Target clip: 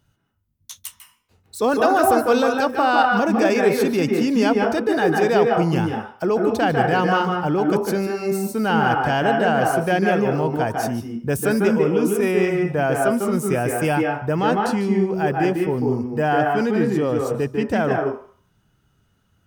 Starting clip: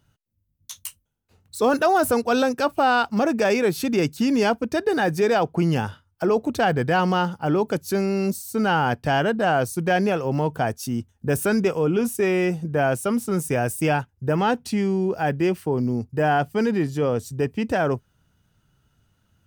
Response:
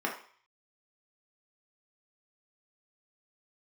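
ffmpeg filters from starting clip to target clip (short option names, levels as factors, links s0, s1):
-filter_complex "[0:a]asplit=2[s0][s1];[1:a]atrim=start_sample=2205,adelay=148[s2];[s1][s2]afir=irnorm=-1:irlink=0,volume=0.355[s3];[s0][s3]amix=inputs=2:normalize=0"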